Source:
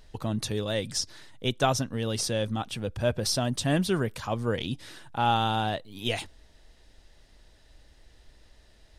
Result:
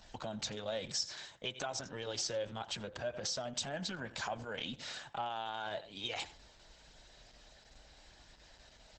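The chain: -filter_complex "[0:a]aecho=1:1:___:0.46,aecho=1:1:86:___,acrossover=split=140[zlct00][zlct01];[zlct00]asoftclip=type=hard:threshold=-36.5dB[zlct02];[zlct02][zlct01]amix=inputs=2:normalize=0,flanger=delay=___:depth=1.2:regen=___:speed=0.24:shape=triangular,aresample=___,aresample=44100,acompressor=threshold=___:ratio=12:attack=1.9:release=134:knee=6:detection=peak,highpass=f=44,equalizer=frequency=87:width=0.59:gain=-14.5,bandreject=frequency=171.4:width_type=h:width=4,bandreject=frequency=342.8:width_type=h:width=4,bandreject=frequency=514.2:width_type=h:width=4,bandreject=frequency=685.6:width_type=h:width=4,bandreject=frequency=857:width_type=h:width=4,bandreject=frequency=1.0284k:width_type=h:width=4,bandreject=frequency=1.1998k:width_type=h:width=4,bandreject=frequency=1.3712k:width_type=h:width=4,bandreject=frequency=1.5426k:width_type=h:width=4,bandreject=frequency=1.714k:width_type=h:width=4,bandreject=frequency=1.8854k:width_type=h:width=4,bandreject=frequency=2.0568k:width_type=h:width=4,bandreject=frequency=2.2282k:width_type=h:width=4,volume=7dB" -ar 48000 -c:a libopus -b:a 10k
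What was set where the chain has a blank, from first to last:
1.3, 0.0794, 1.1, -53, 32000, -37dB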